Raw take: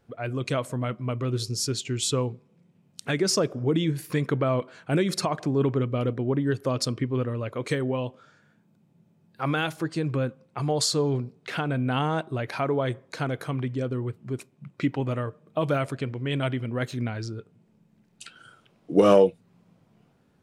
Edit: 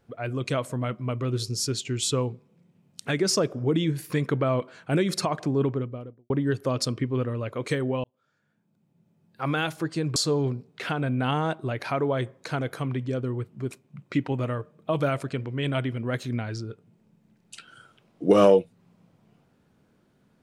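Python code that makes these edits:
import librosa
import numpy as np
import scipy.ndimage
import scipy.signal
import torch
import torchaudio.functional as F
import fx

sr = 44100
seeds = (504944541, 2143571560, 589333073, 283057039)

y = fx.studio_fade_out(x, sr, start_s=5.46, length_s=0.84)
y = fx.edit(y, sr, fx.fade_in_span(start_s=8.04, length_s=1.58),
    fx.cut(start_s=10.16, length_s=0.68), tone=tone)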